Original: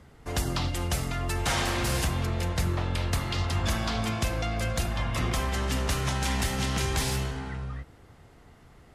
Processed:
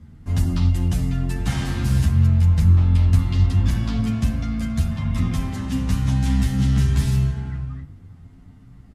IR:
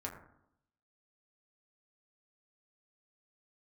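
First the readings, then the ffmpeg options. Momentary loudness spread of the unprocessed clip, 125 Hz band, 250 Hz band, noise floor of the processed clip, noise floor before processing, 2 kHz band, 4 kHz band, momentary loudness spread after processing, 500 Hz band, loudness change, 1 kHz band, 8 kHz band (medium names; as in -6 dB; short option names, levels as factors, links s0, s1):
5 LU, +11.5 dB, +9.5 dB, -46 dBFS, -54 dBFS, -4.5 dB, -4.5 dB, 9 LU, -5.5 dB, +8.5 dB, -5.5 dB, -5.0 dB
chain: -filter_complex "[0:a]lowshelf=f=310:t=q:w=1.5:g=13,asplit=2[s0][s1];[1:a]atrim=start_sample=2205[s2];[s1][s2]afir=irnorm=-1:irlink=0,volume=0.473[s3];[s0][s3]amix=inputs=2:normalize=0,asplit=2[s4][s5];[s5]adelay=10.1,afreqshift=0.4[s6];[s4][s6]amix=inputs=2:normalize=1,volume=0.631"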